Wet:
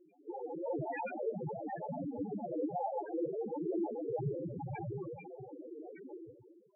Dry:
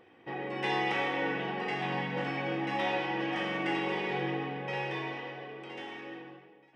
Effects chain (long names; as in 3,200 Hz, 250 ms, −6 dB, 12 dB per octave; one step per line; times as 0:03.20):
amplitude modulation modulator 230 Hz, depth 70%
hum removal 226.3 Hz, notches 38
cochlear-implant simulation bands 8
spectral peaks only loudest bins 2
level +10 dB